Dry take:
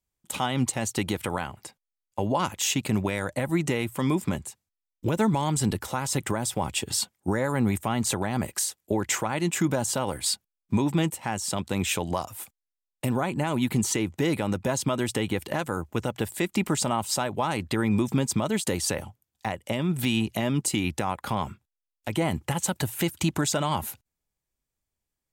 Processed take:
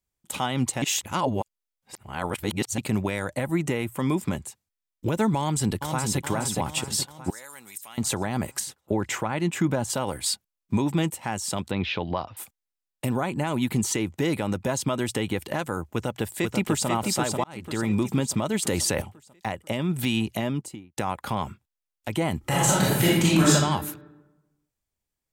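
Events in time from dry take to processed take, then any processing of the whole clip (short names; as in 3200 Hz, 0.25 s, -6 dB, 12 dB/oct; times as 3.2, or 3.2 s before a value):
0.82–2.78 reverse
3.47–4.1 bell 4500 Hz -5 dB 1.2 oct
5.39–6.23 echo throw 0.42 s, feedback 55%, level -5.5 dB
7.3–7.98 differentiator
8.6–9.9 tone controls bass +2 dB, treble -7 dB
11.71–12.37 steep low-pass 4600 Hz 48 dB/oct
15.93–16.88 echo throw 0.49 s, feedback 50%, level -4 dB
17.44–18.06 fade in equal-power
18.62–19.02 fast leveller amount 70%
20.33–20.97 studio fade out
22.4–23.5 reverb throw, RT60 1.1 s, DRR -8 dB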